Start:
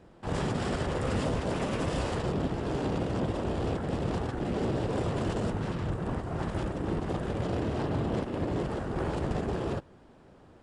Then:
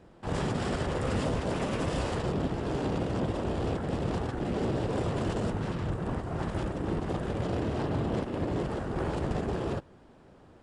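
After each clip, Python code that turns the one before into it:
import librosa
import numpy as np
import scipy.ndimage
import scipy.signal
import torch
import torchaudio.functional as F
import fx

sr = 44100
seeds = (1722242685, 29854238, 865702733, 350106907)

y = x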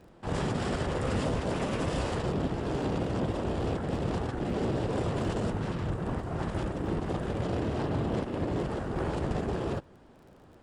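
y = fx.dmg_crackle(x, sr, seeds[0], per_s=28.0, level_db=-50.0)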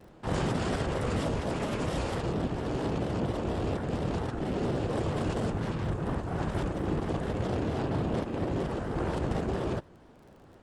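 y = fx.rider(x, sr, range_db=10, speed_s=2.0)
y = fx.vibrato_shape(y, sr, shape='square', rate_hz=4.3, depth_cents=100.0)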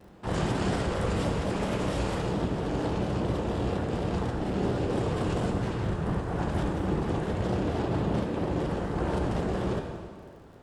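y = fx.rev_plate(x, sr, seeds[1], rt60_s=1.9, hf_ratio=0.9, predelay_ms=0, drr_db=3.0)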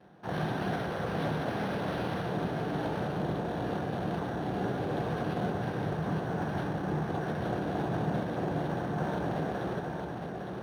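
y = fx.cabinet(x, sr, low_hz=120.0, low_slope=12, high_hz=9100.0, hz=(150.0, 730.0, 1600.0, 3500.0), db=(6, 7, 8, 7))
y = y + 10.0 ** (-4.5 / 20.0) * np.pad(y, (int(860 * sr / 1000.0), 0))[:len(y)]
y = np.interp(np.arange(len(y)), np.arange(len(y))[::6], y[::6])
y = y * 10.0 ** (-5.5 / 20.0)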